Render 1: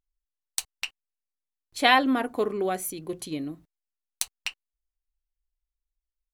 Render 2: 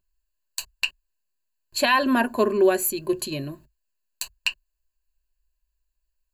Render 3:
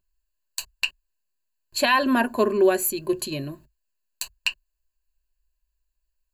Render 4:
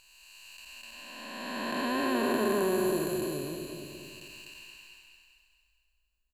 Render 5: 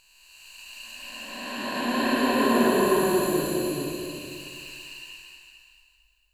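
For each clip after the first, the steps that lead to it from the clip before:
bell 220 Hz -2 dB 2.1 oct; limiter -15 dBFS, peak gain reduction 10 dB; ripple EQ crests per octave 1.4, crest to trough 14 dB; gain +5.5 dB
nothing audible
time blur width 0.992 s; feedback echo 0.225 s, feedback 48%, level -9 dB
non-linear reverb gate 0.47 s rising, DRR -6 dB

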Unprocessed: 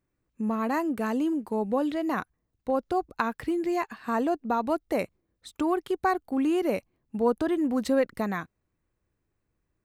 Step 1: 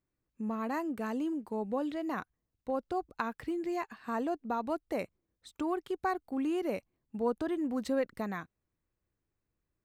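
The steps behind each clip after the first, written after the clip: bell 11000 Hz -7 dB 0.22 oct; gain -7 dB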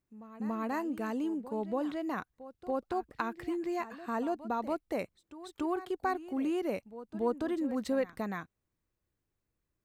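pre-echo 0.284 s -15 dB

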